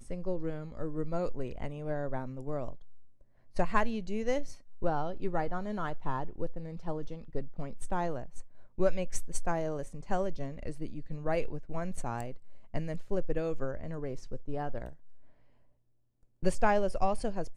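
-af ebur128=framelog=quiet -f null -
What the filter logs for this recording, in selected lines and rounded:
Integrated loudness:
  I:         -35.9 LUFS
  Threshold: -46.1 LUFS
Loudness range:
  LRA:         3.8 LU
  Threshold: -56.9 LUFS
  LRA low:   -38.9 LUFS
  LRA high:  -35.1 LUFS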